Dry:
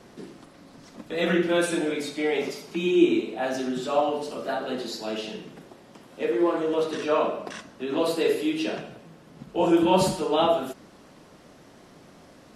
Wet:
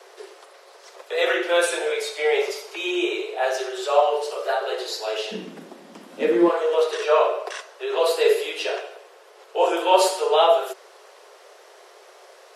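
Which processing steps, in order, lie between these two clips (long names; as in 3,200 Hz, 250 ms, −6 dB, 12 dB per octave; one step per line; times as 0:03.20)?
Butterworth high-pass 380 Hz 96 dB per octave, from 0:05.31 170 Hz, from 0:06.48 380 Hz
level +5.5 dB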